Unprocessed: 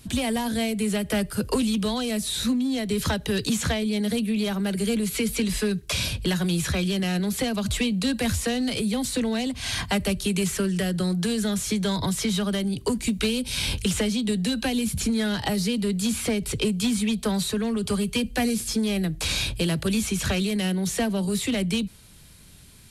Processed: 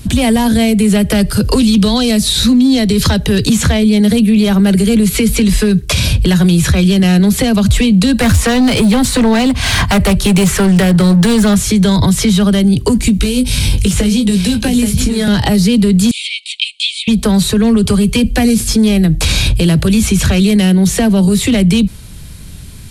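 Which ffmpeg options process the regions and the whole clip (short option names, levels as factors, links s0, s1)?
-filter_complex "[0:a]asettb=1/sr,asplit=3[s0][s1][s2];[s0]atrim=end=1.124[s3];[s1]atrim=start=1.12:end=3.2,asetpts=PTS-STARTPTS,afade=t=in:d=0.004:c=qsin,afade=t=out:st=2.076:d=0.004:c=qsin,equalizer=f=4500:t=o:w=0.72:g=6,acompressor=mode=upward:threshold=0.0355:ratio=2.5:attack=3.2:release=140:knee=2.83:detection=peak[s4];[s2]atrim=start=3.196[s5];[s3][s4]acrossfade=d=0.004:c1=hsin:c2=qsin[s6];[s6][s5]acrossfade=d=0.004:c1=qsin:c2=hsin,asettb=1/sr,asplit=3[s7][s8][s9];[s7]atrim=end=8.204[s10];[s8]atrim=start=8.2:end=11.56,asetpts=PTS-STARTPTS,afade=t=in:d=0.004:c=qsin,afade=t=out:st=3.356:d=0.004:c=qsin,equalizer=f=1100:t=o:w=2.2:g=7.5,volume=14.1,asoftclip=hard,volume=0.0708[s11];[s9]atrim=start=11.556[s12];[s10][s11]acrossfade=d=0.004:c1=hsin:c2=qsin[s13];[s13][s12]acrossfade=d=0.004:c1=qsin:c2=hsin,asettb=1/sr,asplit=3[s14][s15][s16];[s14]atrim=end=13.194[s17];[s15]atrim=start=13.19:end=15.28,asetpts=PTS-STARTPTS,afade=t=in:d=0.004:c=qsin,afade=t=out:st=2.086:d=0.004:c=qsin,aecho=1:1:824:0.299,atrim=end_sample=92169,acrossover=split=380|5800[s18][s19][s20];[s18]acompressor=threshold=0.0355:ratio=4[s21];[s19]acompressor=threshold=0.02:ratio=4[s22];[s20]acompressor=threshold=0.02:ratio=4[s23];[s21][s22][s23]amix=inputs=3:normalize=0,asplit=2[s24][s25];[s25]adelay=20,volume=0.447[s26];[s24][s26]amix=inputs=2:normalize=0,atrim=end_sample=92169[s27];[s16]atrim=start=15.276[s28];[s17][s27]acrossfade=d=0.004:c1=hsin:c2=qsin[s29];[s29][s28]acrossfade=d=0.004:c1=qsin:c2=hsin,asettb=1/sr,asplit=3[s30][s31][s32];[s30]atrim=end=16.114[s33];[s31]atrim=start=16.11:end=17.08,asetpts=PTS-STARTPTS,afade=t=in:d=0.004:c=qsin,afade=t=out:st=0.966:d=0.004:c=qsin,asuperpass=centerf=4900:order=20:qfactor=0.66,highshelf=f=4700:t=q:w=3:g=-7.5[s34];[s32]atrim=start=17.076[s35];[s33][s34]acrossfade=d=0.004:c1=hsin:c2=qsin[s36];[s36][s35]acrossfade=d=0.004:c1=qsin:c2=hsin,lowshelf=f=200:g=10.5,alimiter=level_in=5.62:limit=0.891:release=50:level=0:latency=1,volume=0.75"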